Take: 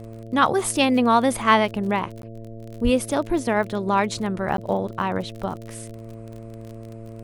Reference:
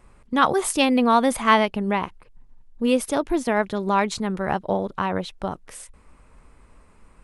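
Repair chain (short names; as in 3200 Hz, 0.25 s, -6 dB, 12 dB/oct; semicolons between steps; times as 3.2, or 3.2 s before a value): de-click; de-hum 112.8 Hz, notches 6; de-plosive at 2.83; interpolate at 2.22/4.57, 12 ms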